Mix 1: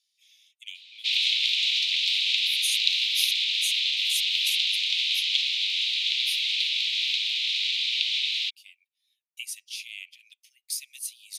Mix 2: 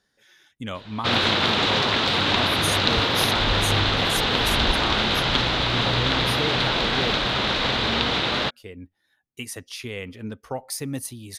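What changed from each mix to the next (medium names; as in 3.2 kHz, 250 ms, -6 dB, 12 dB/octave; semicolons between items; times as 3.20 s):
master: remove steep high-pass 2.3 kHz 72 dB/octave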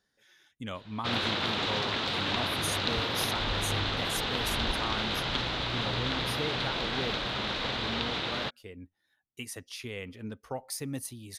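speech -6.0 dB; background -9.5 dB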